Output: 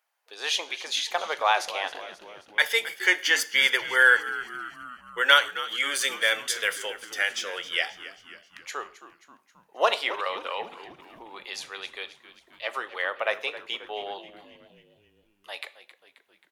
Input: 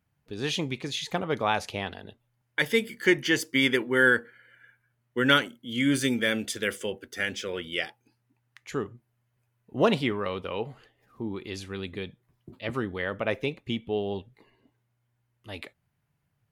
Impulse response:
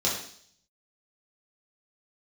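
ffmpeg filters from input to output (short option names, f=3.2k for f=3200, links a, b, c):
-filter_complex "[0:a]highpass=f=640:w=0.5412,highpass=f=640:w=1.3066,asplit=6[a][b][c][d][e][f];[b]adelay=267,afreqshift=-81,volume=-15dB[g];[c]adelay=534,afreqshift=-162,volume=-20dB[h];[d]adelay=801,afreqshift=-243,volume=-25.1dB[i];[e]adelay=1068,afreqshift=-324,volume=-30.1dB[j];[f]adelay=1335,afreqshift=-405,volume=-35.1dB[k];[a][g][h][i][j][k]amix=inputs=6:normalize=0,asplit=2[l][m];[1:a]atrim=start_sample=2205,afade=t=out:st=0.22:d=0.01,atrim=end_sample=10143[n];[m][n]afir=irnorm=-1:irlink=0,volume=-23.5dB[o];[l][o]amix=inputs=2:normalize=0,volume=4.5dB"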